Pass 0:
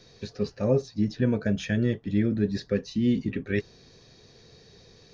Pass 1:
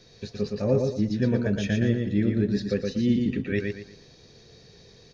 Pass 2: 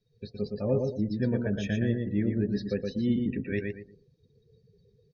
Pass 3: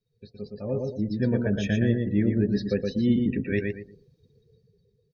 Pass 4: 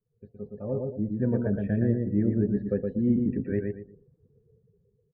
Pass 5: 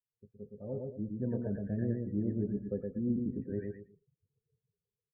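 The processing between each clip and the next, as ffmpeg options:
ffmpeg -i in.wav -filter_complex "[0:a]equalizer=frequency=1100:width_type=o:width=0.77:gain=-2.5,asplit=2[link_01][link_02];[link_02]aecho=0:1:117|234|351|468:0.631|0.196|0.0606|0.0188[link_03];[link_01][link_03]amix=inputs=2:normalize=0" out.wav
ffmpeg -i in.wav -af "afftdn=noise_reduction=27:noise_floor=-42,volume=-4dB" out.wav
ffmpeg -i in.wav -af "dynaudnorm=framelen=220:gausssize=9:maxgain=11dB,volume=-6dB" out.wav
ffmpeg -i in.wav -af "lowpass=frequency=1400:width=0.5412,lowpass=frequency=1400:width=1.3066,volume=-1.5dB" out.wav
ffmpeg -i in.wav -filter_complex "[0:a]afftdn=noise_reduction=18:noise_floor=-43,acrossover=split=1500[link_01][link_02];[link_02]adelay=90[link_03];[link_01][link_03]amix=inputs=2:normalize=0,volume=-8.5dB" out.wav

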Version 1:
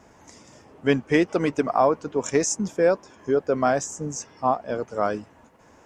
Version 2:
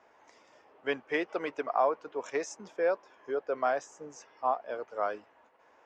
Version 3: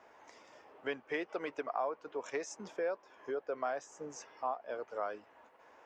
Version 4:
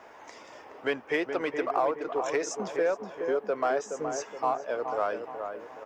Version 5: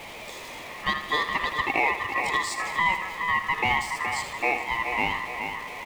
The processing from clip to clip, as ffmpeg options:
ffmpeg -i in.wav -filter_complex "[0:a]acrossover=split=400 4300:gain=0.0794 1 0.1[link_01][link_02][link_03];[link_01][link_02][link_03]amix=inputs=3:normalize=0,volume=-6dB" out.wav
ffmpeg -i in.wav -af "acompressor=threshold=-42dB:ratio=2,volume=2dB" out.wav
ffmpeg -i in.wav -filter_complex "[0:a]asplit=2[link_01][link_02];[link_02]asoftclip=type=hard:threshold=-39.5dB,volume=-10dB[link_03];[link_01][link_03]amix=inputs=2:normalize=0,asplit=2[link_04][link_05];[link_05]adelay=421,lowpass=frequency=1300:poles=1,volume=-6dB,asplit=2[link_06][link_07];[link_07]adelay=421,lowpass=frequency=1300:poles=1,volume=0.5,asplit=2[link_08][link_09];[link_09]adelay=421,lowpass=frequency=1300:poles=1,volume=0.5,asplit=2[link_10][link_11];[link_11]adelay=421,lowpass=frequency=1300:poles=1,volume=0.5,asplit=2[link_12][link_13];[link_13]adelay=421,lowpass=frequency=1300:poles=1,volume=0.5,asplit=2[link_14][link_15];[link_15]adelay=421,lowpass=frequency=1300:poles=1,volume=0.5[link_16];[link_04][link_06][link_08][link_10][link_12][link_14][link_16]amix=inputs=7:normalize=0,volume=7.5dB" out.wav
ffmpeg -i in.wav -af "aeval=exprs='val(0)+0.5*0.01*sgn(val(0))':channel_layout=same,aecho=1:1:79|158|237|316|395|474:0.316|0.164|0.0855|0.0445|0.0231|0.012,aeval=exprs='val(0)*sin(2*PI*1500*n/s)':channel_layout=same,volume=4.5dB" out.wav

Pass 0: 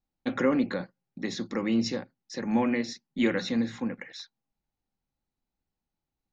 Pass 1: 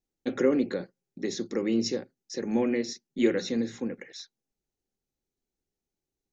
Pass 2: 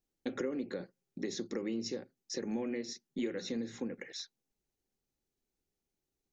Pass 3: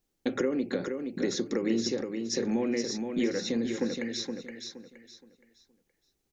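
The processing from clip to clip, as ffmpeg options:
ffmpeg -i in.wav -af "equalizer=frequency=400:width_type=o:width=0.67:gain=12,equalizer=frequency=1000:width_type=o:width=0.67:gain=-6,equalizer=frequency=6300:width_type=o:width=0.67:gain=9,volume=-4dB" out.wav
ffmpeg -i in.wav -af "acompressor=threshold=-35dB:ratio=4" out.wav
ffmpeg -i in.wav -af "aecho=1:1:470|940|1410|1880:0.501|0.145|0.0421|0.0122,volume=7.5dB" out.wav

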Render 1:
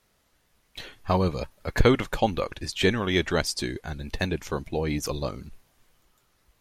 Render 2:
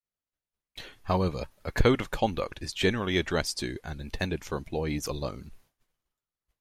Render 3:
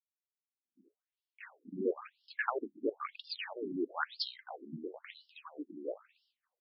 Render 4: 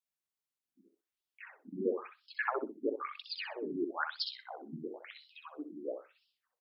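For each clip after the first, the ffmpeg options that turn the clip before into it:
ffmpeg -i in.wav -af "agate=range=-33dB:threshold=-51dB:ratio=3:detection=peak,volume=-3dB" out.wav
ffmpeg -i in.wav -filter_complex "[0:a]acrossover=split=260[link_01][link_02];[link_02]adelay=630[link_03];[link_01][link_03]amix=inputs=2:normalize=0,afftfilt=real='re*between(b*sr/1024,240*pow(4000/240,0.5+0.5*sin(2*PI*1*pts/sr))/1.41,240*pow(4000/240,0.5+0.5*sin(2*PI*1*pts/sr))*1.41)':imag='im*between(b*sr/1024,240*pow(4000/240,0.5+0.5*sin(2*PI*1*pts/sr))/1.41,240*pow(4000/240,0.5+0.5*sin(2*PI*1*pts/sr))*1.41)':win_size=1024:overlap=0.75,volume=1dB" out.wav
ffmpeg -i in.wav -af "aecho=1:1:63|126|189:0.447|0.067|0.0101" out.wav

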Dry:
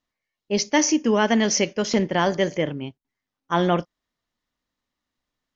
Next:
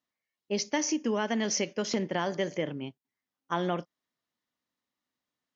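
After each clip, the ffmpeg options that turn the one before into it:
ffmpeg -i in.wav -af "highpass=130,acompressor=threshold=-21dB:ratio=3,volume=-5dB" out.wav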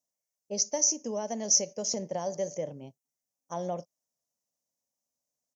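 ffmpeg -i in.wav -af "firequalizer=gain_entry='entry(160,0);entry(330,-7);entry(570,7);entry(1400,-15);entry(2000,-11);entry(3400,-12);entry(5900,14);entry(9500,9)':delay=0.05:min_phase=1,volume=-4.5dB" out.wav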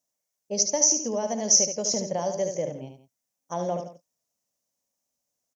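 ffmpeg -i in.wav -af "aecho=1:1:74|166:0.447|0.141,volume=4.5dB" out.wav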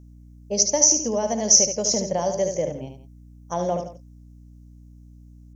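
ffmpeg -i in.wav -af "aeval=exprs='val(0)+0.00355*(sin(2*PI*60*n/s)+sin(2*PI*2*60*n/s)/2+sin(2*PI*3*60*n/s)/3+sin(2*PI*4*60*n/s)/4+sin(2*PI*5*60*n/s)/5)':channel_layout=same,volume=4dB" out.wav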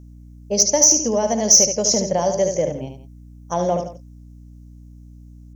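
ffmpeg -i in.wav -af "asoftclip=type=tanh:threshold=-7dB,volume=4.5dB" out.wav

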